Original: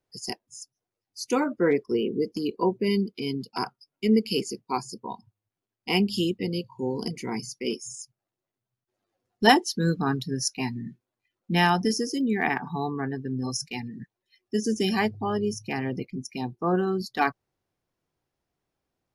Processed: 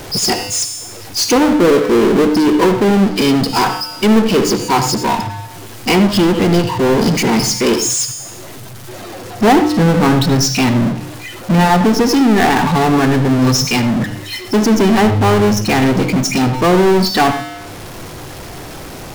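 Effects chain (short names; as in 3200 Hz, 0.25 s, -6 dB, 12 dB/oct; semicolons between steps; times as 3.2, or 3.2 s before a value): resonator 100 Hz, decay 0.53 s, harmonics odd, mix 40%; treble ducked by the level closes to 940 Hz, closed at -23 dBFS; power-law curve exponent 0.35; on a send: reverb RT60 0.30 s, pre-delay 76 ms, DRR 10 dB; on the sum: gain +7.5 dB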